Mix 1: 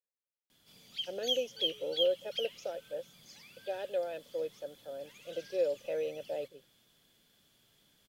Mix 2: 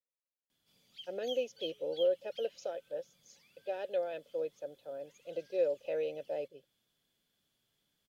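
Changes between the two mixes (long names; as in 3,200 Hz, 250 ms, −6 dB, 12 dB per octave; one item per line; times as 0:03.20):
background −9.5 dB
reverb: off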